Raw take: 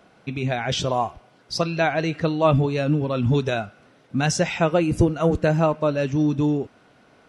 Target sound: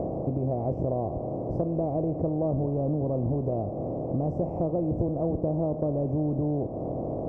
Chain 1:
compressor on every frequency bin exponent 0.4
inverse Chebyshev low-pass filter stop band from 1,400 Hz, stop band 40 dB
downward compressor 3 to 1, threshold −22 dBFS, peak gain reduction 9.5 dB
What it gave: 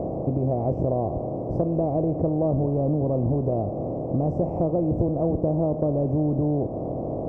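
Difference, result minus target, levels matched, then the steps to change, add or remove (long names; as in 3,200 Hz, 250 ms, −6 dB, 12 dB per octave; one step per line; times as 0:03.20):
downward compressor: peak gain reduction −4 dB
change: downward compressor 3 to 1, threshold −28 dBFS, peak gain reduction 13.5 dB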